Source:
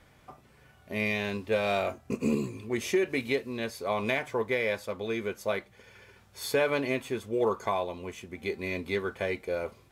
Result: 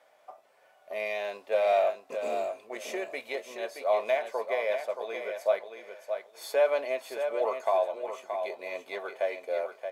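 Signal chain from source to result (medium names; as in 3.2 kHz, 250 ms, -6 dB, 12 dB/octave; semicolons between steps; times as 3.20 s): resonant high-pass 630 Hz, resonance Q 4.9; on a send: feedback delay 625 ms, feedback 21%, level -7.5 dB; on the sum: trim -6 dB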